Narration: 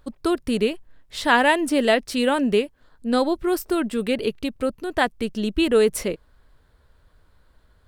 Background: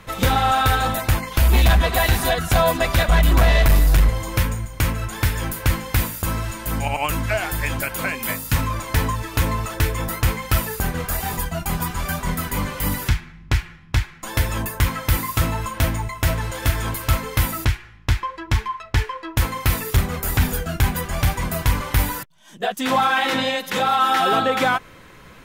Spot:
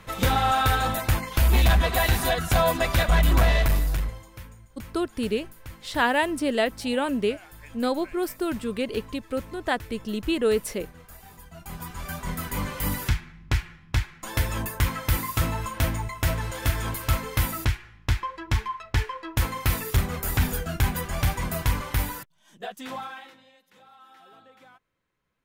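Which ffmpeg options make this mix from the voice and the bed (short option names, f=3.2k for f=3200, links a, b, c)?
-filter_complex "[0:a]adelay=4700,volume=-5dB[a];[1:a]volume=14dB,afade=t=out:st=3.4:d=0.89:silence=0.11885,afade=t=in:st=11.43:d=1.29:silence=0.125893,afade=t=out:st=21.58:d=1.78:silence=0.0316228[b];[a][b]amix=inputs=2:normalize=0"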